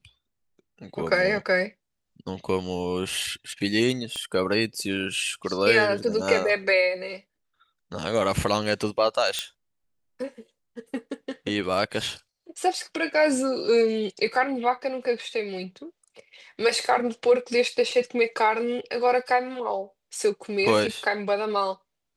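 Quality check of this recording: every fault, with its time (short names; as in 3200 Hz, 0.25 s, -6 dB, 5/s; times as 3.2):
4.16 pop -20 dBFS
9.39 pop -12 dBFS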